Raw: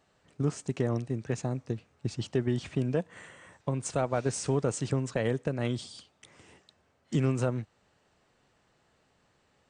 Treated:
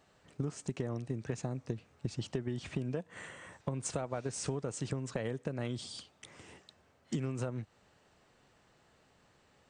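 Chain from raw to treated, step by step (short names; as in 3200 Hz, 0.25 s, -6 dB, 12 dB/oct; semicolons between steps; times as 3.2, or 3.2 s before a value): compressor 12:1, threshold -34 dBFS, peak gain reduction 12.5 dB; gain +2 dB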